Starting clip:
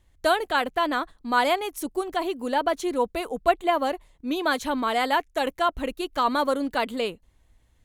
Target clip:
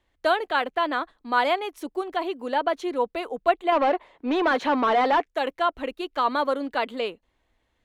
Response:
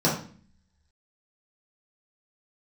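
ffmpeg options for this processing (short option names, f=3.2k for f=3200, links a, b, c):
-filter_complex "[0:a]asettb=1/sr,asplit=3[a][b][c];[a]atrim=end=3.724[d];[b]atrim=start=3.72:end=5.26,asetpts=PTS-STARTPTS,afade=t=in:d=0.004:c=qsin,afade=t=out:st=1.536:d=0.004:c=qsin,asplit=2[e][f];[f]highpass=f=720:p=1,volume=24dB,asoftclip=type=tanh:threshold=-11.5dB[g];[e][g]amix=inputs=2:normalize=0,lowpass=f=1.1k:p=1,volume=-6dB[h];[c]atrim=start=5.256[i];[d][h]acrossfade=d=0.004:c1=hsin:c2=qsin[j];[j][i]acrossfade=d=0.004:c1=qsin:c2=hsin,acrossover=split=250 4600:gain=0.224 1 0.2[k][l][m];[k][l][m]amix=inputs=3:normalize=0"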